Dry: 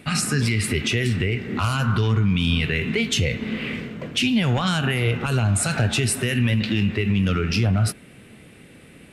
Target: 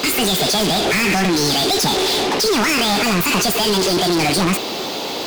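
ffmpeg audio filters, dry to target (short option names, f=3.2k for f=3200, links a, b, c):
-filter_complex "[0:a]asetrate=76440,aresample=44100,asplit=2[a][b];[b]highpass=f=720:p=1,volume=34dB,asoftclip=type=tanh:threshold=-11dB[c];[a][c]amix=inputs=2:normalize=0,lowpass=f=7.8k:p=1,volume=-6dB"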